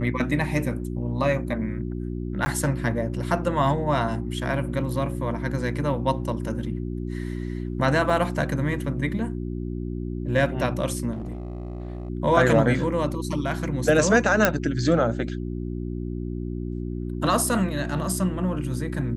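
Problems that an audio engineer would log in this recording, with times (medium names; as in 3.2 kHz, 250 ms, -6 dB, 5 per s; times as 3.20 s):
hum 60 Hz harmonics 6 -30 dBFS
2.45–2.46 s: dropout 10 ms
8.10 s: dropout 2.4 ms
11.12–12.10 s: clipped -28.5 dBFS
14.45 s: pop -2 dBFS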